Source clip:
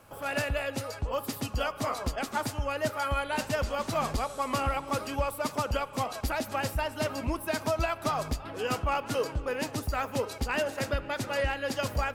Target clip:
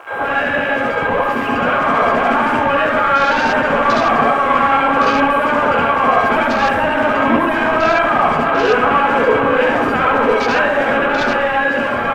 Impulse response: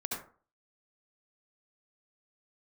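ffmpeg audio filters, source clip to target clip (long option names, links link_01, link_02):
-filter_complex "[0:a]acrossover=split=150[link_01][link_02];[link_01]acompressor=threshold=-47dB:ratio=6[link_03];[link_03][link_02]amix=inputs=2:normalize=0,asplit=2[link_04][link_05];[link_05]highpass=frequency=720:poles=1,volume=32dB,asoftclip=type=tanh:threshold=-15.5dB[link_06];[link_04][link_06]amix=inputs=2:normalize=0,lowpass=frequency=3100:poles=1,volume=-6dB,dynaudnorm=framelen=400:gausssize=7:maxgain=5dB,aecho=1:1:69|138|207|276|345:0.126|0.073|0.0424|0.0246|0.0142,asplit=2[link_07][link_08];[link_08]alimiter=limit=-19dB:level=0:latency=1,volume=-1dB[link_09];[link_07][link_09]amix=inputs=2:normalize=0,highshelf=frequency=8100:gain=-9.5,acrusher=bits=7:dc=4:mix=0:aa=0.000001,aeval=exprs='val(0)+0.0282*sin(2*PI*1600*n/s)':channel_layout=same[link_10];[1:a]atrim=start_sample=2205[link_11];[link_10][link_11]afir=irnorm=-1:irlink=0,afwtdn=0.0631,volume=-2dB"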